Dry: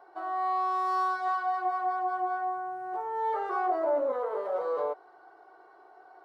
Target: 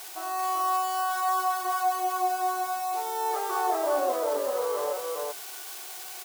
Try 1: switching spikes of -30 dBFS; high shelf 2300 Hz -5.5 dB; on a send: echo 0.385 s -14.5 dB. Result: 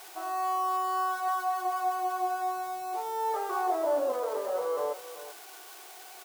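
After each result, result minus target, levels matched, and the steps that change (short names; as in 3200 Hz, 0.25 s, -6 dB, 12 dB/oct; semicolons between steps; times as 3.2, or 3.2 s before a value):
echo-to-direct -11.5 dB; 4000 Hz band -5.0 dB
change: echo 0.385 s -3 dB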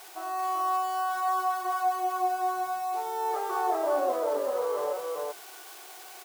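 4000 Hz band -5.0 dB
change: high shelf 2300 Hz +2.5 dB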